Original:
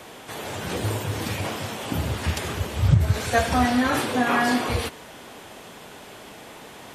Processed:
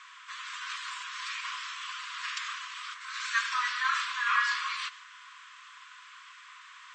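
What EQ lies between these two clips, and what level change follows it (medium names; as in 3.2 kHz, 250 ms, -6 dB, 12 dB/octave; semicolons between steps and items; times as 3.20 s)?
dynamic bell 4.4 kHz, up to +4 dB, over -42 dBFS, Q 0.85; brick-wall FIR band-pass 980–8200 Hz; treble shelf 2.8 kHz -10.5 dB; 0.0 dB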